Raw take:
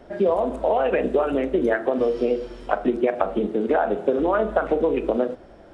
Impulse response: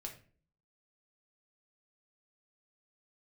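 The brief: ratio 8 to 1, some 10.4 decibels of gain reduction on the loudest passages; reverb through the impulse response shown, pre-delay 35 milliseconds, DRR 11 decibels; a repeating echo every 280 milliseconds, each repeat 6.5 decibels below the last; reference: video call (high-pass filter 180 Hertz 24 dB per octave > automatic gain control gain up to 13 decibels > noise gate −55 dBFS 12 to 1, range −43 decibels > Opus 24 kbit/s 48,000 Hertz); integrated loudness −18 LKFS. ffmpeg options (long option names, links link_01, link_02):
-filter_complex "[0:a]acompressor=threshold=-27dB:ratio=8,aecho=1:1:280|560|840|1120|1400|1680:0.473|0.222|0.105|0.0491|0.0231|0.0109,asplit=2[link_01][link_02];[1:a]atrim=start_sample=2205,adelay=35[link_03];[link_02][link_03]afir=irnorm=-1:irlink=0,volume=-7.5dB[link_04];[link_01][link_04]amix=inputs=2:normalize=0,highpass=frequency=180:width=0.5412,highpass=frequency=180:width=1.3066,dynaudnorm=maxgain=13dB,agate=range=-43dB:threshold=-55dB:ratio=12,volume=12.5dB" -ar 48000 -c:a libopus -b:a 24k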